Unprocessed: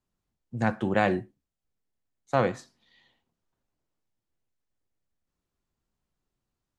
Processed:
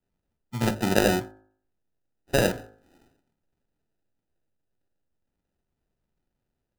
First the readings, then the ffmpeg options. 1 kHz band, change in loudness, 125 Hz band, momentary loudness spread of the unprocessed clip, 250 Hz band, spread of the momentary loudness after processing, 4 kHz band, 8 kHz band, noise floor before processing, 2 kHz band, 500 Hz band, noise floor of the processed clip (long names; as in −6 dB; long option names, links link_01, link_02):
−2.0 dB, +2.5 dB, +2.5 dB, 12 LU, +2.5 dB, 16 LU, +12.0 dB, +18.5 dB, below −85 dBFS, +2.5 dB, +2.5 dB, −82 dBFS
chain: -af "acrusher=samples=40:mix=1:aa=0.000001,bandreject=frequency=53.3:width_type=h:width=4,bandreject=frequency=106.6:width_type=h:width=4,bandreject=frequency=159.9:width_type=h:width=4,bandreject=frequency=213.2:width_type=h:width=4,bandreject=frequency=266.5:width_type=h:width=4,bandreject=frequency=319.8:width_type=h:width=4,bandreject=frequency=373.1:width_type=h:width=4,bandreject=frequency=426.4:width_type=h:width=4,bandreject=frequency=479.7:width_type=h:width=4,bandreject=frequency=533:width_type=h:width=4,bandreject=frequency=586.3:width_type=h:width=4,bandreject=frequency=639.6:width_type=h:width=4,bandreject=frequency=692.9:width_type=h:width=4,bandreject=frequency=746.2:width_type=h:width=4,bandreject=frequency=799.5:width_type=h:width=4,bandreject=frequency=852.8:width_type=h:width=4,bandreject=frequency=906.1:width_type=h:width=4,bandreject=frequency=959.4:width_type=h:width=4,bandreject=frequency=1012.7:width_type=h:width=4,bandreject=frequency=1066:width_type=h:width=4,bandreject=frequency=1119.3:width_type=h:width=4,bandreject=frequency=1172.6:width_type=h:width=4,bandreject=frequency=1225.9:width_type=h:width=4,bandreject=frequency=1279.2:width_type=h:width=4,bandreject=frequency=1332.5:width_type=h:width=4,bandreject=frequency=1385.8:width_type=h:width=4,bandreject=frequency=1439.1:width_type=h:width=4,bandreject=frequency=1492.4:width_type=h:width=4,bandreject=frequency=1545.7:width_type=h:width=4,bandreject=frequency=1599:width_type=h:width=4,bandreject=frequency=1652.3:width_type=h:width=4,bandreject=frequency=1705.6:width_type=h:width=4,volume=3dB"